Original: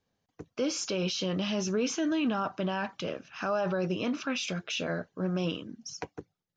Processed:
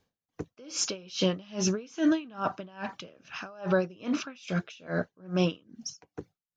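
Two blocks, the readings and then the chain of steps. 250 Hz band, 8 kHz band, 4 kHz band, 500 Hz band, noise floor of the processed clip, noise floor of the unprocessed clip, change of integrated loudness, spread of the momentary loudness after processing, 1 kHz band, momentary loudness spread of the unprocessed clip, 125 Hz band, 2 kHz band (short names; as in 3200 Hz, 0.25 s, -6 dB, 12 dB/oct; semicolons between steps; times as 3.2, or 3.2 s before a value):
+0.5 dB, +2.5 dB, -1.5 dB, -0.5 dB, under -85 dBFS, -83 dBFS, +0.5 dB, 16 LU, -1.5 dB, 12 LU, +1.5 dB, -1.0 dB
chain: dB-linear tremolo 2.4 Hz, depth 28 dB; gain +7.5 dB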